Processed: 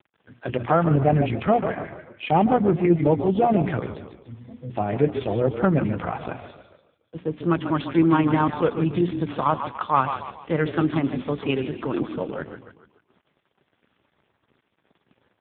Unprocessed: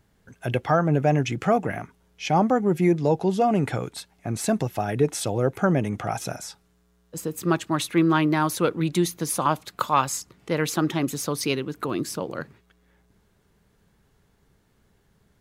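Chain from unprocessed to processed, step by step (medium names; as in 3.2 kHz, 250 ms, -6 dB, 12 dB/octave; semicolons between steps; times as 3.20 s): tracing distortion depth 0.056 ms; hum notches 60/120/180/240/300/360/420 Hz; in parallel at -6.5 dB: hard clipper -21.5 dBFS, distortion -8 dB; 3.98–4.70 s: on the sum: pitch-class resonator B, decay 0.32 s; bit crusher 9-bit; on a send: frequency-shifting echo 144 ms, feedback 43%, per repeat -31 Hz, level -8 dB; on the sum: AMR-NB 4.75 kbps 8 kHz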